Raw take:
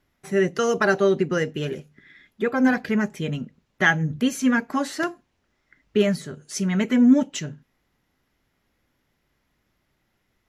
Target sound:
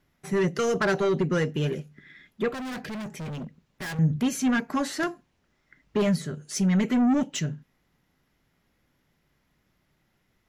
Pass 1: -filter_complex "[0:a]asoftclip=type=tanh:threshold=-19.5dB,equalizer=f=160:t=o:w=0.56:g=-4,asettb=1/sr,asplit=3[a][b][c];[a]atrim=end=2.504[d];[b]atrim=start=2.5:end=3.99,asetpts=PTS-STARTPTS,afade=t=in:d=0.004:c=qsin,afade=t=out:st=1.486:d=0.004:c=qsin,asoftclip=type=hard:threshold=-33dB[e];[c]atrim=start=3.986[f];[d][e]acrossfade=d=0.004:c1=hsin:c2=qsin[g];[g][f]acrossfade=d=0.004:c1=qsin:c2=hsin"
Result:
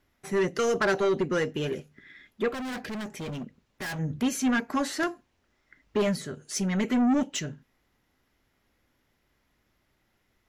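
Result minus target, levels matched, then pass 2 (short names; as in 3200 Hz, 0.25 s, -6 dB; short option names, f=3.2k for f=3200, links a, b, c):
125 Hz band -5.5 dB
-filter_complex "[0:a]asoftclip=type=tanh:threshold=-19.5dB,equalizer=f=160:t=o:w=0.56:g=5.5,asettb=1/sr,asplit=3[a][b][c];[a]atrim=end=2.504[d];[b]atrim=start=2.5:end=3.99,asetpts=PTS-STARTPTS,afade=t=in:d=0.004:c=qsin,afade=t=out:st=1.486:d=0.004:c=qsin,asoftclip=type=hard:threshold=-33dB[e];[c]atrim=start=3.986[f];[d][e]acrossfade=d=0.004:c1=hsin:c2=qsin[g];[g][f]acrossfade=d=0.004:c1=qsin:c2=hsin"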